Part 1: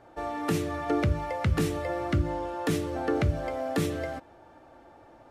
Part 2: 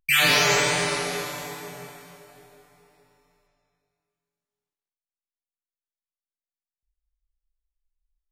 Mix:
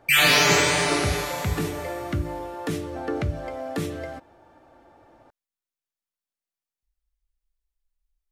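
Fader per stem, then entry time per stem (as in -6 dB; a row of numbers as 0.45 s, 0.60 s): -1.0 dB, +1.5 dB; 0.00 s, 0.00 s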